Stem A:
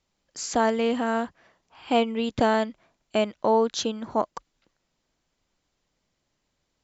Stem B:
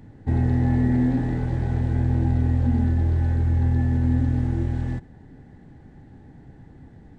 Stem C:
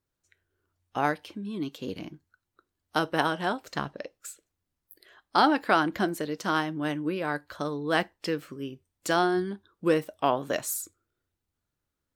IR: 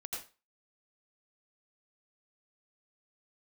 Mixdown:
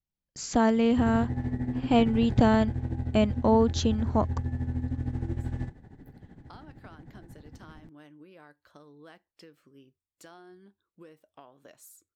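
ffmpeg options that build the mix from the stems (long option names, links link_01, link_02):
-filter_complex "[0:a]agate=range=-21dB:threshold=-58dB:ratio=16:detection=peak,bass=frequency=250:gain=14,treble=frequency=4000:gain=-1,volume=-3.5dB,asplit=2[link_01][link_02];[1:a]tremolo=f=13:d=0.73,acompressor=threshold=-26dB:ratio=10,adelay=700,volume=-0.5dB[link_03];[2:a]acompressor=threshold=-30dB:ratio=6,adelay=1150,volume=-18dB[link_04];[link_02]apad=whole_len=591260[link_05];[link_04][link_05]sidechaincompress=threshold=-43dB:ratio=8:attack=16:release=1050[link_06];[link_01][link_03][link_06]amix=inputs=3:normalize=0"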